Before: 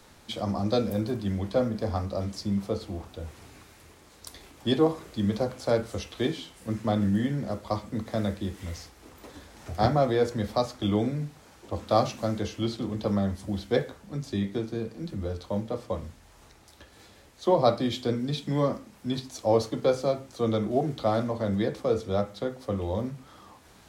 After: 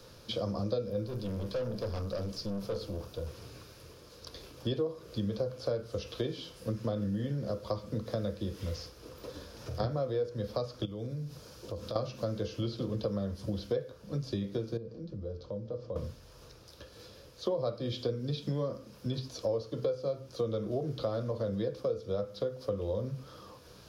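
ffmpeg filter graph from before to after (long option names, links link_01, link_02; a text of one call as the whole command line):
ffmpeg -i in.wav -filter_complex "[0:a]asettb=1/sr,asplit=3[link_01][link_02][link_03];[link_01]atrim=end=1.064[link_04];[link_02]atrim=start=1.06:end=3.27,asetpts=PTS-STARTPTS,afade=type=in:duration=0.004:curve=qsin,afade=type=out:start_time=2.206:duration=0.004:curve=qsin,highshelf=frequency=7700:gain=6.5,aeval=exprs='(tanh(44.7*val(0)+0.35)-tanh(0.35))/44.7':channel_layout=same[link_05];[link_03]atrim=start=3.266[link_06];[link_04][link_05]acrossfade=duration=0.004:curve1=hsin:curve2=qsin[link_07];[link_07][link_06]acrossfade=duration=0.004:curve1=qsin:curve2=hsin,asettb=1/sr,asplit=3[link_08][link_09][link_10];[link_08]atrim=end=9.324[link_11];[link_09]atrim=start=9.32:end=9.8,asetpts=PTS-STARTPTS,afade=type=in:duration=0.004:curve=qsin,afade=type=out:start_time=0.476:duration=0.004:curve=qsin,acompressor=threshold=-37dB:ratio=6:attack=3.2:release=140:knee=1:detection=peak,asplit=2[link_12][link_13];[link_13]adelay=50,volume=-8.5dB[link_14];[link_12][link_14]amix=inputs=2:normalize=0,atrim=end_sample=21168[link_15];[link_10]atrim=start=9.796[link_16];[link_11][link_15]acrossfade=duration=0.004:curve1=hsin:curve2=qsin[link_17];[link_17][link_16]acrossfade=duration=0.004:curve1=qsin:curve2=hsin,asettb=1/sr,asplit=3[link_18][link_19][link_20];[link_18]atrim=end=10.854[link_21];[link_19]atrim=start=10.85:end=11.96,asetpts=PTS-STARTPTS,afade=type=in:duration=0.004:curve=qsin,afade=type=out:start_time=1.106:duration=0.004:curve=qsin,bass=frequency=250:gain=3,treble=frequency=4000:gain=5,acompressor=threshold=-38dB:ratio=5:attack=3.2:release=140:knee=1:detection=peak[link_22];[link_20]atrim=start=11.956[link_23];[link_21][link_22]acrossfade=duration=0.004:curve1=hsin:curve2=qsin[link_24];[link_24][link_23]acrossfade=duration=0.004:curve1=qsin:curve2=hsin,asettb=1/sr,asplit=3[link_25][link_26][link_27];[link_25]atrim=end=14.774[link_28];[link_26]atrim=start=14.77:end=15.96,asetpts=PTS-STARTPTS,afade=type=in:duration=0.004:curve=qsin,afade=type=out:start_time=1.186:duration=0.004:curve=qsin,equalizer=frequency=2700:width=0.38:gain=-9.5,acompressor=threshold=-45dB:ratio=2:attack=3.2:release=140:knee=1:detection=peak,lowpass=frequency=5800:width=0.5412,lowpass=frequency=5800:width=1.3066[link_29];[link_27]atrim=start=15.956[link_30];[link_28][link_29]acrossfade=duration=0.004:curve1=hsin:curve2=qsin[link_31];[link_31][link_30]acrossfade=duration=0.004:curve1=qsin:curve2=hsin,acrossover=split=4700[link_32][link_33];[link_33]acompressor=threshold=-51dB:ratio=4:attack=1:release=60[link_34];[link_32][link_34]amix=inputs=2:normalize=0,equalizer=frequency=125:width_type=o:width=0.33:gain=8,equalizer=frequency=250:width_type=o:width=0.33:gain=-4,equalizer=frequency=500:width_type=o:width=0.33:gain=10,equalizer=frequency=800:width_type=o:width=0.33:gain=-10,equalizer=frequency=2000:width_type=o:width=0.33:gain=-10,equalizer=frequency=5000:width_type=o:width=0.33:gain=7,equalizer=frequency=8000:width_type=o:width=0.33:gain=-10,acompressor=threshold=-30dB:ratio=6" out.wav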